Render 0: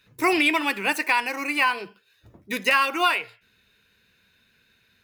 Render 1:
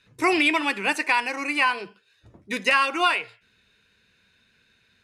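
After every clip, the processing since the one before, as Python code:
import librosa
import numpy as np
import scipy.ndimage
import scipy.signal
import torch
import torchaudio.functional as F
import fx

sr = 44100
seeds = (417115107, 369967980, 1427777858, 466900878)

y = scipy.signal.sosfilt(scipy.signal.butter(4, 10000.0, 'lowpass', fs=sr, output='sos'), x)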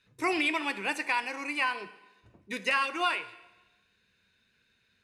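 y = fx.rev_plate(x, sr, seeds[0], rt60_s=1.1, hf_ratio=0.95, predelay_ms=0, drr_db=13.5)
y = y * 10.0 ** (-7.5 / 20.0)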